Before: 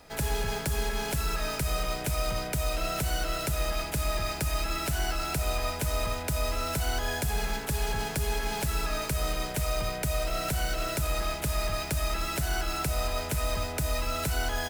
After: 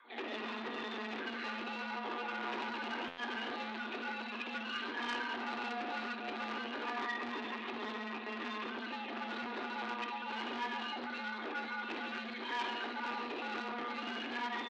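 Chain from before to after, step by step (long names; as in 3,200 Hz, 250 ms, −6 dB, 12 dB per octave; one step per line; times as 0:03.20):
time-frequency cells dropped at random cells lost 30%
low-shelf EQ 250 Hz −12 dB
flutter between parallel walls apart 11.1 metres, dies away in 0.54 s
linear-prediction vocoder at 8 kHz pitch kept
single-tap delay 138 ms −9.5 dB
frequency shifter +220 Hz
mains-hum notches 50/100/150/200/250 Hz
tuned comb filter 240 Hz, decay 0.56 s, harmonics all, mix 80%
hollow resonant body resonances 390/1,200/2,500 Hz, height 8 dB
buffer that repeats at 0:03.07, samples 512, times 8
saturating transformer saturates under 2,300 Hz
level +8 dB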